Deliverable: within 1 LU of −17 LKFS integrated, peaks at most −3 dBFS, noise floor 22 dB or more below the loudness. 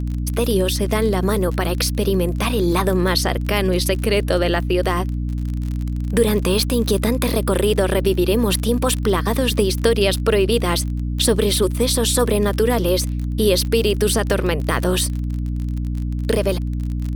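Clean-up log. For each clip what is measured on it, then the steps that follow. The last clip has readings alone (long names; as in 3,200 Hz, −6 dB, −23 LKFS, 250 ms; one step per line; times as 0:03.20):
crackle rate 27 per second; mains hum 60 Hz; hum harmonics up to 300 Hz; level of the hum −20 dBFS; integrated loudness −19.5 LKFS; sample peak −3.5 dBFS; target loudness −17.0 LKFS
→ click removal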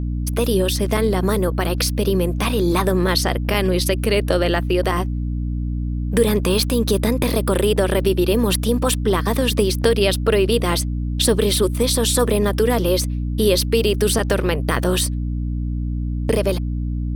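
crackle rate 1.6 per second; mains hum 60 Hz; hum harmonics up to 300 Hz; level of the hum −20 dBFS
→ mains-hum notches 60/120/180/240/300 Hz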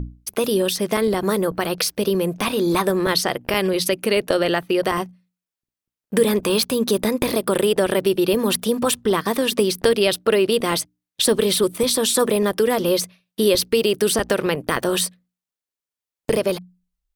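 mains hum none found; integrated loudness −20.0 LKFS; sample peak −4.0 dBFS; target loudness −17.0 LKFS
→ level +3 dB
brickwall limiter −3 dBFS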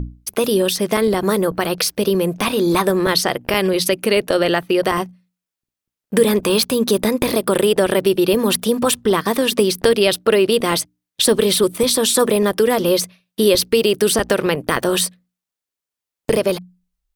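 integrated loudness −17.0 LKFS; sample peak −3.0 dBFS; background noise floor −87 dBFS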